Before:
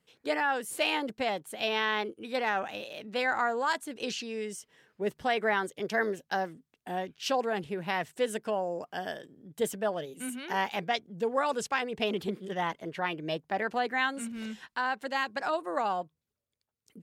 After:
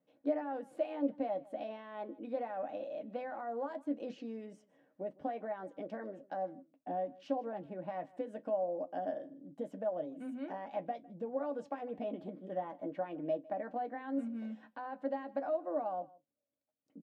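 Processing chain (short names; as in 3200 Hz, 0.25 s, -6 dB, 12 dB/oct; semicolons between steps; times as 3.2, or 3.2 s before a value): limiter -22 dBFS, peak gain reduction 7 dB; compressor, threshold -33 dBFS, peak gain reduction 7.5 dB; double band-pass 400 Hz, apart 0.99 oct; echo 0.155 s -22.5 dB; on a send at -4 dB: reverb, pre-delay 3 ms; on the sum: gain +8 dB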